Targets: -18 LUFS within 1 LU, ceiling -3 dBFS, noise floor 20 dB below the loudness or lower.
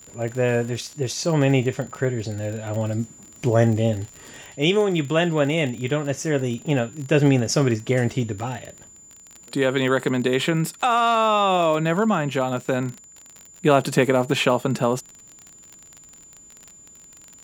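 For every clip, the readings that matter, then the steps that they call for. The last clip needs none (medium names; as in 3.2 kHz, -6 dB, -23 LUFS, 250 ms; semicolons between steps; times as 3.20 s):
tick rate 38 per s; steady tone 7.1 kHz; tone level -45 dBFS; loudness -22.0 LUFS; peak level -3.5 dBFS; loudness target -18.0 LUFS
-> de-click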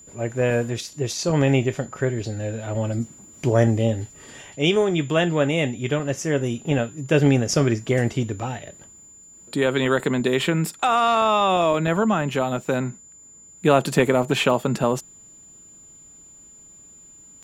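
tick rate 0.057 per s; steady tone 7.1 kHz; tone level -45 dBFS
-> band-stop 7.1 kHz, Q 30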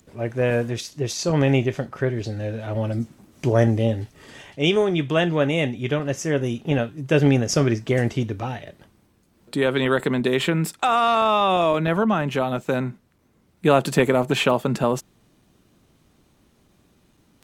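steady tone not found; loudness -22.0 LUFS; peak level -3.5 dBFS; loudness target -18.0 LUFS
-> trim +4 dB; peak limiter -3 dBFS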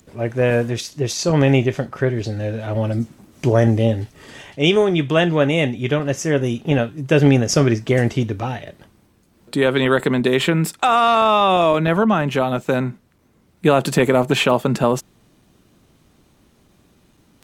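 loudness -18.0 LUFS; peak level -3.0 dBFS; noise floor -58 dBFS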